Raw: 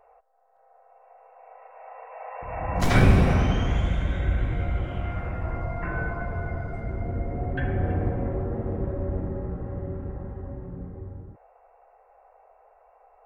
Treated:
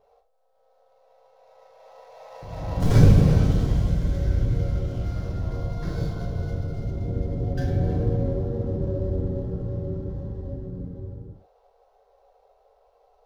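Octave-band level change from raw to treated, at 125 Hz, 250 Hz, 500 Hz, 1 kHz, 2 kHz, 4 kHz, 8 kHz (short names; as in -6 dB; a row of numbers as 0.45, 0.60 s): +4.0 dB, +2.0 dB, +1.0 dB, -7.5 dB, -10.5 dB, -3.5 dB, n/a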